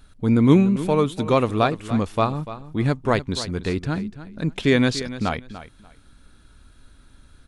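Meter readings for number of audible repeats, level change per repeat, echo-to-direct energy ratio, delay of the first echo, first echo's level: 2, −13.5 dB, −14.0 dB, 292 ms, −14.0 dB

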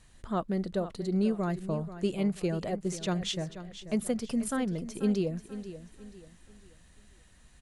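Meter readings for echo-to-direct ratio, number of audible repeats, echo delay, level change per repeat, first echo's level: −12.5 dB, 3, 486 ms, −9.0 dB, −13.0 dB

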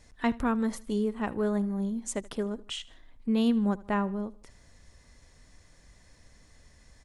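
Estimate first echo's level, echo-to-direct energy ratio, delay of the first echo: −21.0 dB, −20.0 dB, 78 ms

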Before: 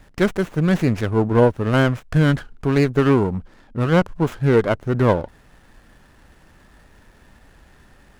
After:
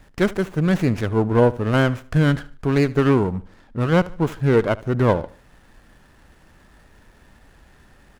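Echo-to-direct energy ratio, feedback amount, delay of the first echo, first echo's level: −19.5 dB, 37%, 74 ms, −20.0 dB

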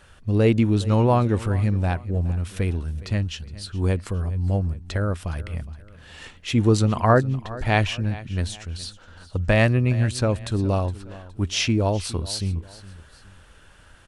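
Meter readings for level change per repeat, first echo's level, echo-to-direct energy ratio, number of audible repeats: −8.0 dB, −18.0 dB, −17.5 dB, 2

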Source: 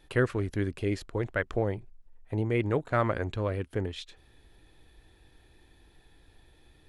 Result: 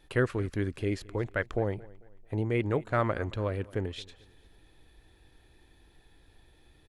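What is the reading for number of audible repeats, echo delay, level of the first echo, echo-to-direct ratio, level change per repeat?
2, 222 ms, −22.0 dB, −21.5 dB, −8.5 dB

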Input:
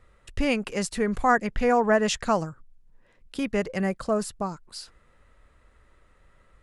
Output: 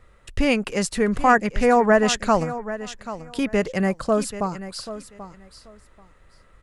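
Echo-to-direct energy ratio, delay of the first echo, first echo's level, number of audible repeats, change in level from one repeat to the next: −13.5 dB, 785 ms, −13.5 dB, 2, −14.5 dB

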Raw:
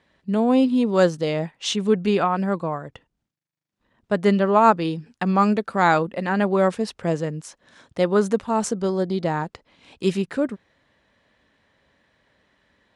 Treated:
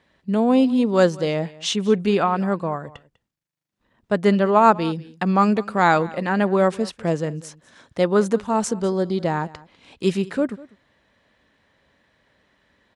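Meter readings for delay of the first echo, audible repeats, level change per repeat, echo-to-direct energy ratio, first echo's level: 198 ms, 1, repeats not evenly spaced, −21.0 dB, −21.0 dB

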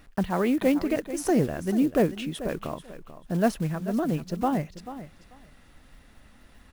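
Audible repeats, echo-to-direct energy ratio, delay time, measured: 2, −13.5 dB, 439 ms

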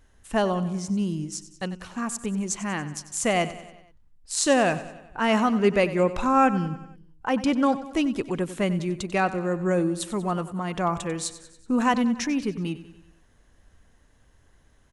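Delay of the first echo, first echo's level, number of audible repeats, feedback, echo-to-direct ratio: 94 ms, −15.0 dB, 4, 56%, −13.5 dB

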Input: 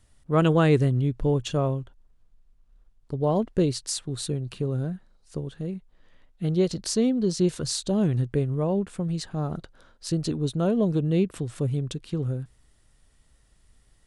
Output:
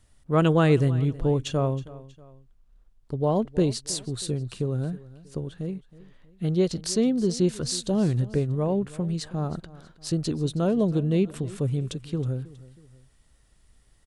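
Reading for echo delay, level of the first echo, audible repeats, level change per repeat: 319 ms, −19.0 dB, 2, −7.0 dB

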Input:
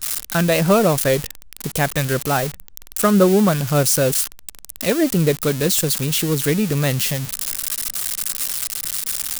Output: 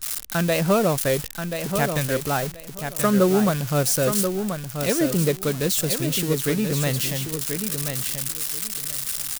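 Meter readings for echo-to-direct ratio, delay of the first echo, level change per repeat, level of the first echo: −7.0 dB, 1,032 ms, −14.5 dB, −7.0 dB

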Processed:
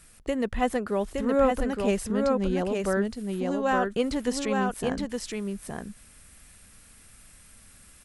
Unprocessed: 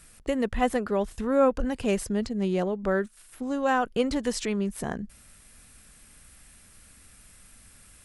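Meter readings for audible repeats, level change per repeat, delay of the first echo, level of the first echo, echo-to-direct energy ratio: 1, repeats not evenly spaced, 867 ms, −3.5 dB, −3.5 dB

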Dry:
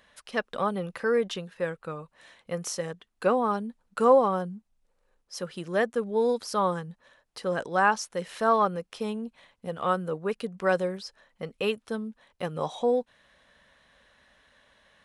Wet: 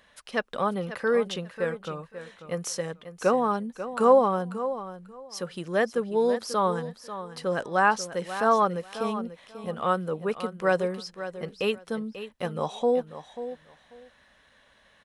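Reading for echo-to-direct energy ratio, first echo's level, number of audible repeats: −12.0 dB, −12.0 dB, 2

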